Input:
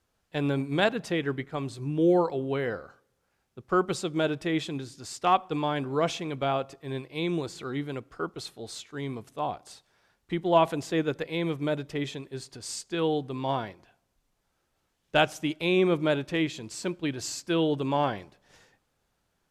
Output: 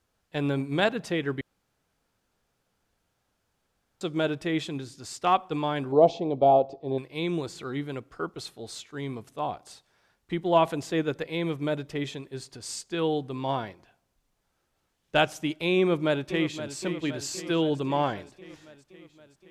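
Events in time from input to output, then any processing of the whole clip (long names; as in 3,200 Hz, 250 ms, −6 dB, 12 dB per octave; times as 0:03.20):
0:01.41–0:04.01: fill with room tone
0:05.92–0:06.98: drawn EQ curve 130 Hz 0 dB, 790 Hz +11 dB, 1,500 Hz −24 dB, 2,300 Hz −13 dB, 4,300 Hz −3 dB, 11,000 Hz −24 dB
0:15.78–0:16.75: delay throw 520 ms, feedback 65%, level −11 dB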